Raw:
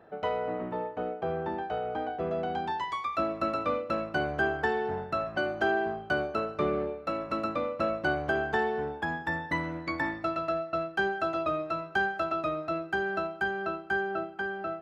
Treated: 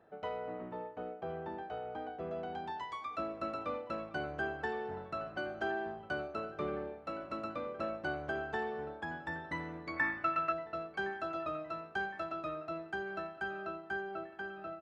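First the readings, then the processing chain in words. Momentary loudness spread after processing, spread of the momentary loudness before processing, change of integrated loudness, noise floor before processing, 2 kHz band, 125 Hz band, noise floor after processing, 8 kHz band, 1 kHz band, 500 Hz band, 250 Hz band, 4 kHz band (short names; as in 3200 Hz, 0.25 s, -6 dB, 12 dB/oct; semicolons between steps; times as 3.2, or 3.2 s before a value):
6 LU, 5 LU, -8.0 dB, -44 dBFS, -8.0 dB, -9.0 dB, -52 dBFS, n/a, -8.0 dB, -9.0 dB, -9.0 dB, -9.0 dB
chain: spectral gain 9.97–10.52, 1000–2800 Hz +10 dB; downsampling 22050 Hz; dark delay 1.064 s, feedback 62%, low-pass 3500 Hz, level -18 dB; gain -9 dB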